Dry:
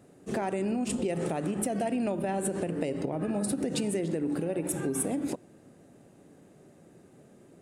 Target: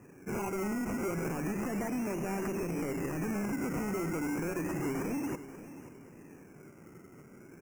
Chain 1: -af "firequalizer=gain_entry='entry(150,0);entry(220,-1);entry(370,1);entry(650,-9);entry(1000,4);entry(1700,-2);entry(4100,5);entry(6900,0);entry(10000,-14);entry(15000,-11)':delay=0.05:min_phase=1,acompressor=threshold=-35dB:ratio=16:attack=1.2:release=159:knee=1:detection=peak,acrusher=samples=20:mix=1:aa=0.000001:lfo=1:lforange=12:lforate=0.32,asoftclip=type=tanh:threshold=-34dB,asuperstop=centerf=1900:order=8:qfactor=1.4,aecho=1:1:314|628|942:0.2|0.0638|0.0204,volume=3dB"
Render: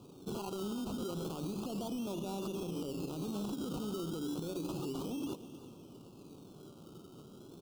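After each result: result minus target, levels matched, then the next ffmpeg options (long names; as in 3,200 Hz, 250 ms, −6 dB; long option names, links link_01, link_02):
downward compressor: peak gain reduction +13.5 dB; 2,000 Hz band −12.0 dB; echo 219 ms early
-af "firequalizer=gain_entry='entry(150,0);entry(220,-1);entry(370,1);entry(650,-9);entry(1000,4);entry(1700,-2);entry(4100,5);entry(6900,0);entry(10000,-14);entry(15000,-11)':delay=0.05:min_phase=1,acrusher=samples=20:mix=1:aa=0.000001:lfo=1:lforange=12:lforate=0.32,asoftclip=type=tanh:threshold=-34dB,asuperstop=centerf=1900:order=8:qfactor=1.4,aecho=1:1:314|628|942:0.2|0.0638|0.0204,volume=3dB"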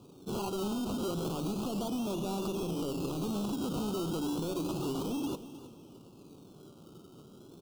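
2,000 Hz band −12.0 dB; echo 219 ms early
-af "firequalizer=gain_entry='entry(150,0);entry(220,-1);entry(370,1);entry(650,-9);entry(1000,4);entry(1700,-2);entry(4100,5);entry(6900,0);entry(10000,-14);entry(15000,-11)':delay=0.05:min_phase=1,acrusher=samples=20:mix=1:aa=0.000001:lfo=1:lforange=12:lforate=0.32,asoftclip=type=tanh:threshold=-34dB,asuperstop=centerf=3800:order=8:qfactor=1.4,aecho=1:1:314|628|942:0.2|0.0638|0.0204,volume=3dB"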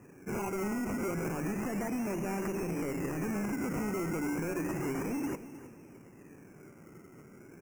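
echo 219 ms early
-af "firequalizer=gain_entry='entry(150,0);entry(220,-1);entry(370,1);entry(650,-9);entry(1000,4);entry(1700,-2);entry(4100,5);entry(6900,0);entry(10000,-14);entry(15000,-11)':delay=0.05:min_phase=1,acrusher=samples=20:mix=1:aa=0.000001:lfo=1:lforange=12:lforate=0.32,asoftclip=type=tanh:threshold=-34dB,asuperstop=centerf=3800:order=8:qfactor=1.4,aecho=1:1:533|1066|1599:0.2|0.0638|0.0204,volume=3dB"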